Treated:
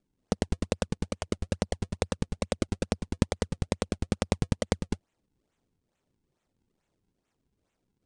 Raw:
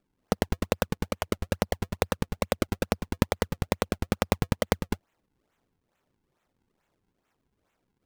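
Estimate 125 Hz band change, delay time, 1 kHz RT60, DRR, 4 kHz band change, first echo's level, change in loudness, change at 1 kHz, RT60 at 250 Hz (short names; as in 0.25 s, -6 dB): -0.5 dB, none, none, none, -3.0 dB, none, -2.5 dB, -6.5 dB, none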